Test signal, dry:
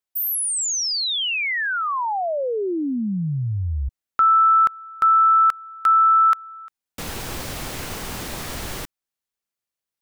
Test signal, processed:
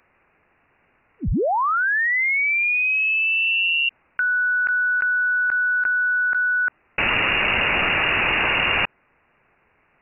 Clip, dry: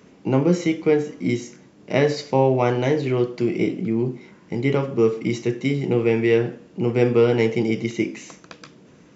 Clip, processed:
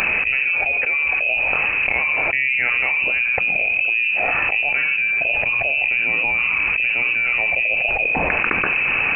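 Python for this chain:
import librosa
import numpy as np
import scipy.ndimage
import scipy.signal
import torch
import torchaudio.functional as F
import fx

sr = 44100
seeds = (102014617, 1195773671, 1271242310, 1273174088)

y = fx.low_shelf(x, sr, hz=190.0, db=-6.5)
y = fx.freq_invert(y, sr, carrier_hz=2800)
y = fx.env_flatten(y, sr, amount_pct=100)
y = y * 10.0 ** (-5.5 / 20.0)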